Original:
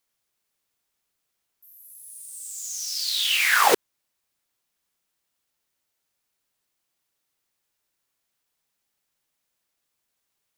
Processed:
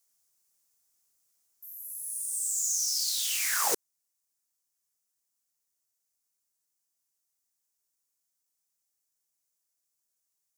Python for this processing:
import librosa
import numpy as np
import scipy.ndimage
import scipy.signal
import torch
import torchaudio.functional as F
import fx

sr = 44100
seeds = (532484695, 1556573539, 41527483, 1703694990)

y = fx.high_shelf_res(x, sr, hz=4600.0, db=10.5, q=1.5)
y = fx.rider(y, sr, range_db=4, speed_s=0.5)
y = y * 10.0 ** (-9.0 / 20.0)